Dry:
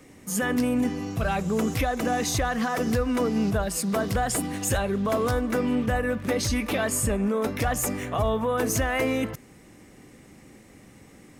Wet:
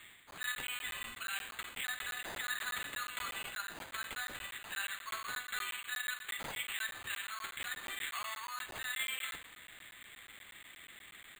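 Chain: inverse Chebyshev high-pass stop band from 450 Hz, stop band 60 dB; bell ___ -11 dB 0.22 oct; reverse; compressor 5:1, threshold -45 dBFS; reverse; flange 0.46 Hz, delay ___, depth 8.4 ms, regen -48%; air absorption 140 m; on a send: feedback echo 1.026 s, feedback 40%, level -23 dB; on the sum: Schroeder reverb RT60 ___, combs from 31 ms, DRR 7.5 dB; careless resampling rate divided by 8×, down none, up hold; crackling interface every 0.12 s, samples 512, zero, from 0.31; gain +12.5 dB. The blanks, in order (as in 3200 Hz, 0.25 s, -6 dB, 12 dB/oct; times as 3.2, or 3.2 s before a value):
7700 Hz, 4.2 ms, 0.56 s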